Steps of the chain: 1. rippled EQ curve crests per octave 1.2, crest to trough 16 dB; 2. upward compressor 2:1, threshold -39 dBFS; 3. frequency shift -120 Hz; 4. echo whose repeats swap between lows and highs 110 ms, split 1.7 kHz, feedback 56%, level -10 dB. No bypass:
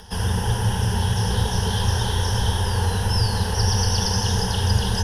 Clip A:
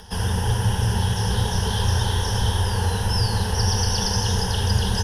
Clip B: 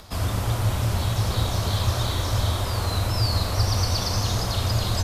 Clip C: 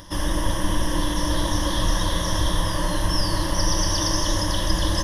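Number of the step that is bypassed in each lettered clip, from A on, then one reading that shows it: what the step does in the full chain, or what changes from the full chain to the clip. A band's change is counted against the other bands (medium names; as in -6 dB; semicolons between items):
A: 4, echo-to-direct -11.0 dB to none; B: 1, loudness change -2.5 LU; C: 3, 125 Hz band -7.5 dB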